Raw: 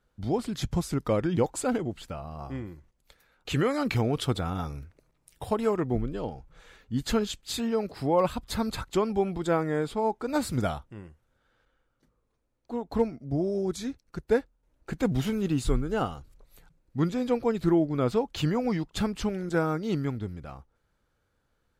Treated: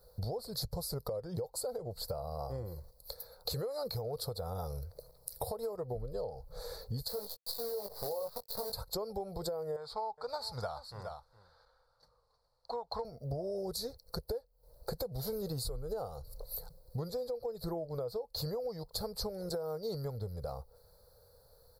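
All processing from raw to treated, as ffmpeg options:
-filter_complex "[0:a]asettb=1/sr,asplit=3[a][b][c];[a]atrim=end=7.084[d];[b]atrim=start=7.08:end=8.73,asetpts=PTS-STARTPTS,afade=t=in:d=0.004:c=qsin,afade=t=out:st=1.646:d=0.004:c=qsin,acrossover=split=170 4200:gain=0.158 1 0.2[e][f][g];[e][f][g]amix=inputs=3:normalize=0,acrusher=bits=6:dc=4:mix=0:aa=0.000001,asplit=2[h][i];[i]adelay=20,volume=-5dB[j];[h][j]amix=inputs=2:normalize=0,atrim=end_sample=72765[k];[c]atrim=start=8.726[l];[d][k]acrossfade=d=0.004:c1=hsin:c2=qsin[m];[m][l]acrossfade=d=0.004:c1=qsin:c2=hsin,asettb=1/sr,asplit=3[n][o][p];[n]atrim=end=9.764[q];[o]atrim=start=9.76:end=13.05,asetpts=PTS-STARTPTS,afade=t=in:d=0.004:c=qsin,afade=t=out:st=3.286:d=0.004:c=qsin,lowpass=4.7k,lowshelf=f=690:t=q:w=1.5:g=-11.5,aecho=1:1:415:0.119,atrim=end_sample=145089[r];[p]atrim=start=13.046[s];[q][r]acrossfade=d=0.004:c1=hsin:c2=qsin[t];[t][s]acrossfade=d=0.004:c1=qsin:c2=hsin,firequalizer=gain_entry='entry(110,0);entry(290,-19);entry(480,10);entry(690,3);entry(1500,-11);entry(2900,-27);entry(4300,12);entry(6400,-5);entry(12000,15)':delay=0.05:min_phase=1,alimiter=limit=-23dB:level=0:latency=1:release=300,acompressor=threshold=-46dB:ratio=6,volume=9.5dB"

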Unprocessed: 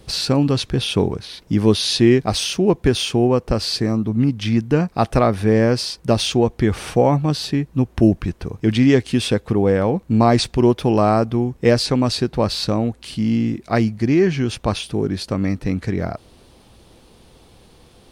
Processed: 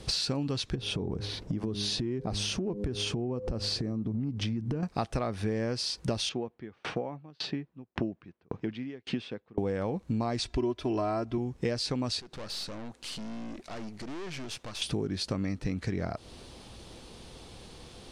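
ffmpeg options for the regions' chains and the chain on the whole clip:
-filter_complex "[0:a]asettb=1/sr,asplit=3[a][b][c];[a]atrim=end=0.754[d];[b]atrim=start=0.75:end=4.83,asetpts=PTS-STARTPTS,afade=t=in:d=0.004:c=qsin,afade=t=out:st=4.076:d=0.004:c=qsin,tiltshelf=f=1.1k:g=7,bandreject=f=102.2:t=h:w=4,bandreject=f=204.4:t=h:w=4,bandreject=f=306.6:t=h:w=4,bandreject=f=408.8:t=h:w=4,bandreject=f=511:t=h:w=4,acompressor=threshold=-23dB:ratio=5:attack=3.2:release=140:knee=1:detection=peak[e];[c]atrim=start=4.826[f];[d][e]acrossfade=d=0.004:c1=hsin:c2=qsin[g];[g][f]acrossfade=d=0.004:c1=qsin:c2=hsin,asettb=1/sr,asplit=3[h][i][j];[h]atrim=end=6.294[k];[i]atrim=start=6.29:end=9.58,asetpts=PTS-STARTPTS,afade=t=in:d=0.004:c=qsin,afade=t=out:st=3.286:d=0.004:c=qsin,highpass=150,lowpass=2.7k,aeval=exprs='val(0)*pow(10,-38*if(lt(mod(1.8*n/s,1),2*abs(1.8)/1000),1-mod(1.8*n/s,1)/(2*abs(1.8)/1000),(mod(1.8*n/s,1)-2*abs(1.8)/1000)/(1-2*abs(1.8)/1000))/20)':c=same[l];[j]atrim=start=9.576[m];[k][l]acrossfade=d=0.004:c1=hsin:c2=qsin[n];[n][m]acrossfade=d=0.004:c1=qsin:c2=hsin,asettb=1/sr,asplit=3[o][p][q];[o]atrim=end=10.454[r];[p]atrim=start=10.45:end=11.38,asetpts=PTS-STARTPTS,afade=t=in:d=0.004:c=qsin,afade=t=out:st=0.926:d=0.004:c=qsin,highshelf=f=6.7k:g=-9.5,aecho=1:1:3:0.83,atrim=end_sample=41013[s];[q]atrim=start=11.376[t];[r][s]acrossfade=d=0.004:c1=hsin:c2=qsin[u];[u][t]acrossfade=d=0.004:c1=qsin:c2=hsin,asettb=1/sr,asplit=3[v][w][x];[v]atrim=end=12.204[y];[w]atrim=start=12.2:end=14.82,asetpts=PTS-STARTPTS,afade=t=in:d=0.004:c=qsin,afade=t=out:st=2.616:d=0.004:c=qsin,highpass=f=310:p=1,acompressor=threshold=-31dB:ratio=2.5:attack=3.2:release=140:knee=1:detection=peak,aeval=exprs='(tanh(79.4*val(0)+0.8)-tanh(0.8))/79.4':c=same[z];[x]atrim=start=14.816[aa];[y][z]acrossfade=d=0.004:c1=hsin:c2=qsin[ab];[ab][aa]acrossfade=d=0.004:c1=qsin:c2=hsin,lowpass=7.4k,highshelf=f=4.1k:g=7.5,acompressor=threshold=-29dB:ratio=6"

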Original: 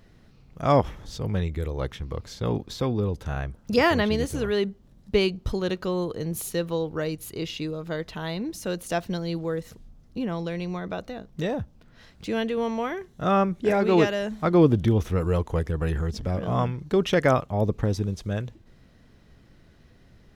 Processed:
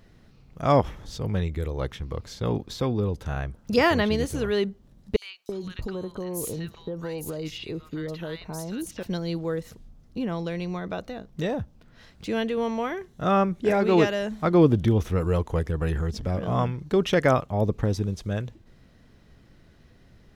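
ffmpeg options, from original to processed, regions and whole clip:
-filter_complex "[0:a]asettb=1/sr,asplit=3[a][b][c];[a]atrim=end=5.164[d];[b]atrim=start=5.16:end=9.03,asetpts=PTS-STARTPTS,afade=t=in:d=0.004:c=qsin,afade=t=out:st=3.866:d=0.004:c=qsin,acompressor=threshold=-27dB:ratio=10:attack=3.2:release=140:knee=1:detection=peak,acrossover=split=1200|4600[e][f][g];[f]adelay=60[h];[e]adelay=330[i];[i][h][g]amix=inputs=3:normalize=0,atrim=end_sample=170667[j];[c]atrim=start=9.026[k];[d][j]acrossfade=d=0.004:c1=hsin:c2=qsin[l];[l][k]acrossfade=d=0.004:c1=qsin:c2=hsin"

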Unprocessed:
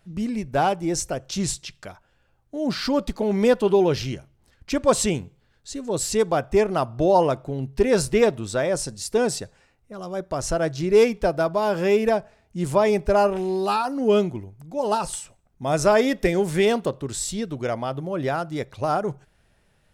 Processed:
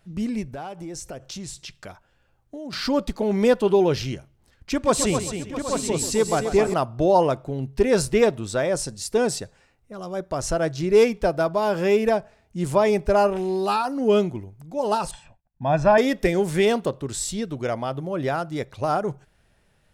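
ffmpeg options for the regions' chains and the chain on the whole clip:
-filter_complex "[0:a]asettb=1/sr,asplit=3[a][b][c];[a]atrim=end=0.524[d];[b]atrim=start=0.52:end=2.73,asetpts=PTS-STARTPTS,afade=t=in:d=0.004:c=qsin,afade=t=out:st=2.206:d=0.004:c=qsin,acompressor=threshold=-32dB:ratio=6:attack=3.2:release=140:knee=1:detection=peak,asoftclip=type=hard:threshold=-26dB[e];[c]atrim=start=2.726[f];[d][e]acrossfade=d=0.004:c1=hsin:c2=qsin[g];[g][f]acrossfade=d=0.004:c1=qsin:c2=hsin,asettb=1/sr,asplit=3[h][i][j];[h]atrim=end=4.724[k];[i]atrim=start=4.72:end=6.74,asetpts=PTS-STARTPTS,afade=t=in:d=0.004:c=qsin,afade=t=out:st=2.016:d=0.004:c=qsin,equalizer=f=560:t=o:w=0.3:g=-4,aecho=1:1:134|263|396|659|775|841:0.282|0.398|0.112|0.168|0.224|0.473,atrim=end_sample=89082[l];[j]atrim=start=6.736[m];[k][l]acrossfade=d=0.004:c1=hsin:c2=qsin[n];[n][m]acrossfade=d=0.004:c1=qsin:c2=hsin,asettb=1/sr,asplit=3[o][p][q];[o]atrim=end=15.114[r];[p]atrim=start=15.11:end=15.98,asetpts=PTS-STARTPTS,afade=t=in:d=0.004:c=qsin,afade=t=out:st=0.866:d=0.004:c=qsin,agate=range=-33dB:threshold=-54dB:ratio=3:release=100:detection=peak,lowpass=2.4k,aecho=1:1:1.2:0.67,atrim=end_sample=38367[s];[q]atrim=start=15.976[t];[r][s]acrossfade=d=0.004:c1=hsin:c2=qsin[u];[u][t]acrossfade=d=0.004:c1=qsin:c2=hsin"

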